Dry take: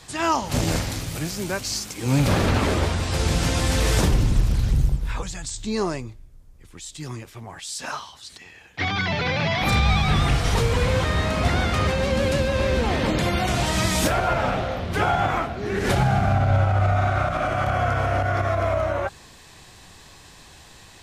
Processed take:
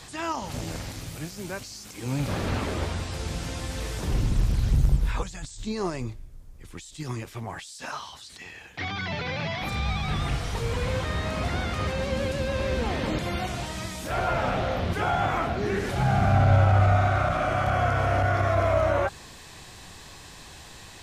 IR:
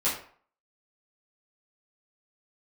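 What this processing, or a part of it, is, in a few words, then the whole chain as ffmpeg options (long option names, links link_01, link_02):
de-esser from a sidechain: -filter_complex "[0:a]asplit=2[link_01][link_02];[link_02]highpass=5400,apad=whole_len=927382[link_03];[link_01][link_03]sidechaincompress=threshold=-53dB:ratio=3:attack=4.8:release=23,volume=3dB"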